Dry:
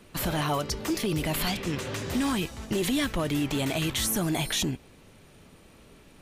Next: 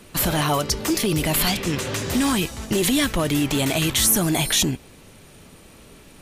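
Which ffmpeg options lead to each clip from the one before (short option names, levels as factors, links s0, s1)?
-af "equalizer=f=11000:t=o:w=1.9:g=5.5,volume=2"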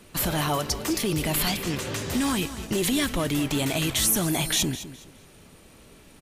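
-af "aecho=1:1:208|416|624:0.2|0.0519|0.0135,volume=0.596"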